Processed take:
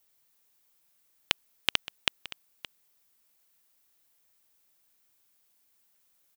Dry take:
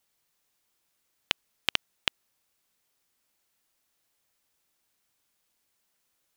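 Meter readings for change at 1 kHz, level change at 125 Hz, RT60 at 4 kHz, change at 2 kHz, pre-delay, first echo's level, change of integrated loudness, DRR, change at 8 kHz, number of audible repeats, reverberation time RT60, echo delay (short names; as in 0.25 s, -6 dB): 0.0 dB, 0.0 dB, none, +0.5 dB, none, -16.5 dB, -0.5 dB, none, +2.5 dB, 1, none, 0.57 s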